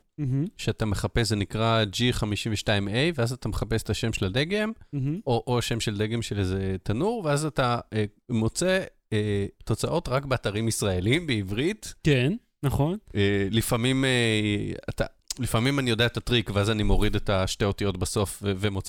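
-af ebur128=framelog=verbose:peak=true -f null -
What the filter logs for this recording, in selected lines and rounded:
Integrated loudness:
  I:         -26.3 LUFS
  Threshold: -36.3 LUFS
Loudness range:
  LRA:         2.4 LU
  Threshold: -46.2 LUFS
  LRA low:   -27.4 LUFS
  LRA high:  -25.0 LUFS
True peak:
  Peak:       -8.9 dBFS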